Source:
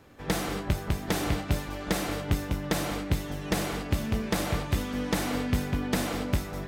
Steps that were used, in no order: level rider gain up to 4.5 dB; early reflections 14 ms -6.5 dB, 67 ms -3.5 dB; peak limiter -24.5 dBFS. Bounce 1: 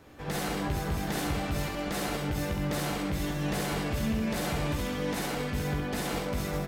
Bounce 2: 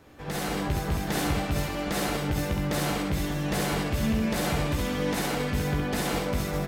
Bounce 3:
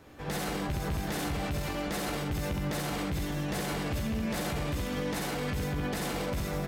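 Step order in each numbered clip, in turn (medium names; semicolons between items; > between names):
level rider > peak limiter > early reflections; peak limiter > early reflections > level rider; early reflections > level rider > peak limiter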